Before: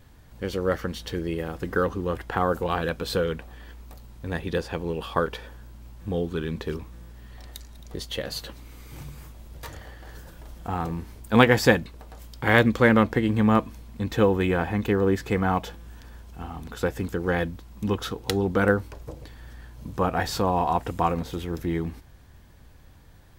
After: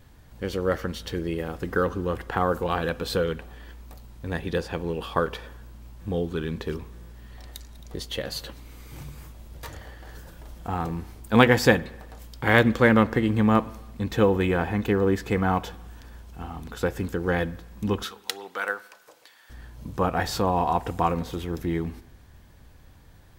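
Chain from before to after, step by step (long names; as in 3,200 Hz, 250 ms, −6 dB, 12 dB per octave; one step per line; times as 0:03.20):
0:18.03–0:19.50: Bessel high-pass filter 1,200 Hz, order 2
spring reverb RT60 1 s, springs 45/53 ms, DRR 19.5 dB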